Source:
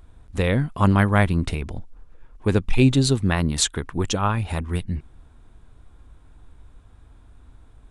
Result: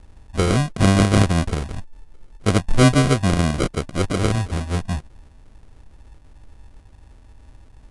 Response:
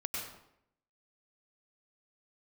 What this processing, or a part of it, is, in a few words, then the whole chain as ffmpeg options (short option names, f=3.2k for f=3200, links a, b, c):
crushed at another speed: -af "asetrate=88200,aresample=44100,acrusher=samples=25:mix=1:aa=0.000001,asetrate=22050,aresample=44100,volume=2.5dB"